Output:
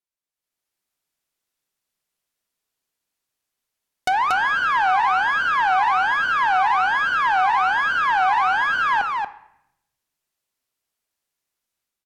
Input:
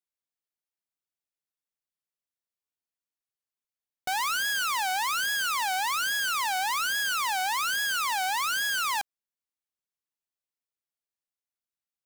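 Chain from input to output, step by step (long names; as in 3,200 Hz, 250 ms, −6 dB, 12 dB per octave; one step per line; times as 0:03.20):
treble cut that deepens with the level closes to 1,400 Hz, closed at −27.5 dBFS
automatic gain control gain up to 11 dB
single-tap delay 233 ms −4 dB
on a send at −12 dB: convolution reverb RT60 0.80 s, pre-delay 3 ms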